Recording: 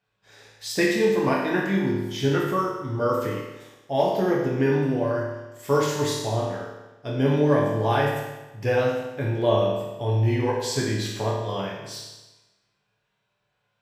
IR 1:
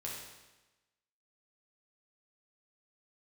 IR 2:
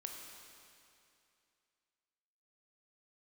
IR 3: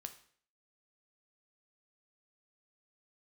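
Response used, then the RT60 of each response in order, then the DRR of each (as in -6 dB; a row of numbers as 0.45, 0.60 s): 1; 1.1, 2.6, 0.55 s; -4.5, 1.0, 7.0 dB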